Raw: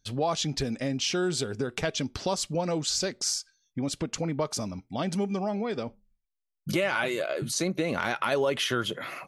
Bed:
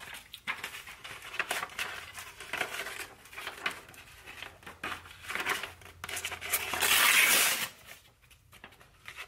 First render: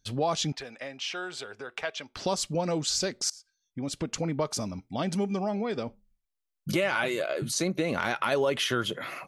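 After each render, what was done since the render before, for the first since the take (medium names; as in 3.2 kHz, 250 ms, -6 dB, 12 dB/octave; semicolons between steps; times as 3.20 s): 0.52–2.17 s: three-band isolator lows -21 dB, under 560 Hz, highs -12 dB, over 3.4 kHz; 3.30–4.11 s: fade in, from -23.5 dB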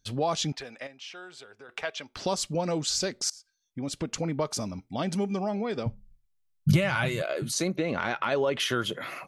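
0.87–1.69 s: gain -8.5 dB; 5.86–7.22 s: resonant low shelf 200 Hz +13.5 dB, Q 1.5; 7.76–8.60 s: distance through air 110 m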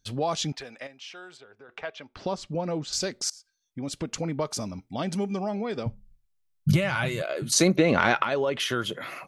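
1.37–2.93 s: tape spacing loss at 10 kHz 20 dB; 7.52–8.23 s: gain +8 dB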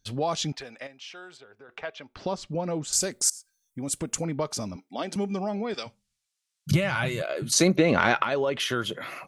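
2.83–4.25 s: resonant high shelf 6.4 kHz +11.5 dB, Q 1.5; 4.76–5.16 s: high-pass 250 Hz 24 dB/octave; 5.74–6.71 s: frequency weighting ITU-R 468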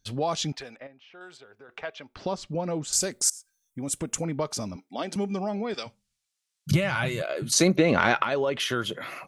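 0.76–1.21 s: tape spacing loss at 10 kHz 38 dB; 3.29–4.37 s: peaking EQ 4.5 kHz -6 dB 0.22 oct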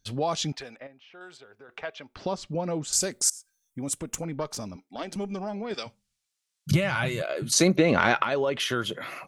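3.93–5.71 s: valve stage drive 16 dB, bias 0.65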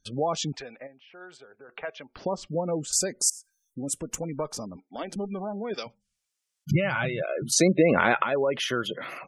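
spectral gate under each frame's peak -25 dB strong; graphic EQ with 31 bands 100 Hz -10 dB, 500 Hz +3 dB, 4 kHz -4 dB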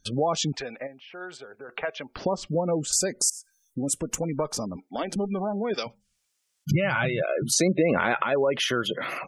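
in parallel at +2 dB: peak limiter -17 dBFS, peak gain reduction 10.5 dB; on the sum: compression 1.5:1, threshold -29 dBFS, peak gain reduction 6.5 dB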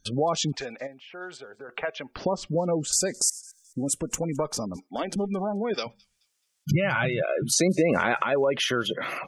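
feedback echo behind a high-pass 215 ms, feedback 33%, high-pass 3.8 kHz, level -23.5 dB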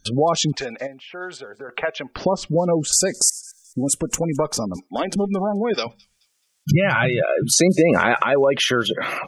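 trim +6.5 dB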